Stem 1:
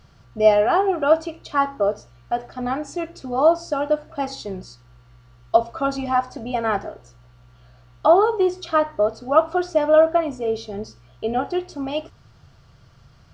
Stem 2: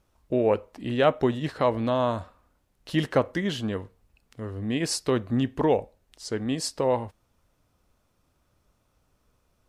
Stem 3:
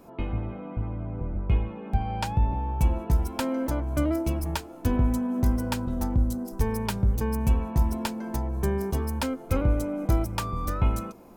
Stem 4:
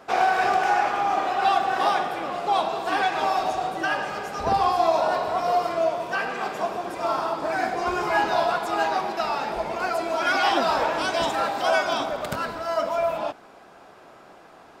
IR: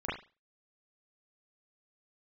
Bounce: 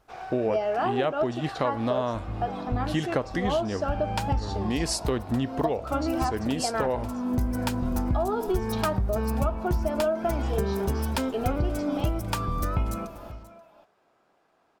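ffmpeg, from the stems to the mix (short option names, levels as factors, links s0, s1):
-filter_complex "[0:a]adelay=100,volume=0.562[s0];[1:a]volume=1.12,asplit=2[s1][s2];[2:a]adelay=1950,volume=1.33,asplit=2[s3][s4];[s4]volume=0.0841[s5];[3:a]volume=0.112,asplit=2[s6][s7];[s7]volume=0.355[s8];[s2]apad=whole_len=587126[s9];[s3][s9]sidechaincompress=threshold=0.00891:ratio=3:attack=16:release=254[s10];[s5][s8]amix=inputs=2:normalize=0,aecho=0:1:533:1[s11];[s0][s1][s10][s6][s11]amix=inputs=5:normalize=0,acompressor=threshold=0.0794:ratio=6"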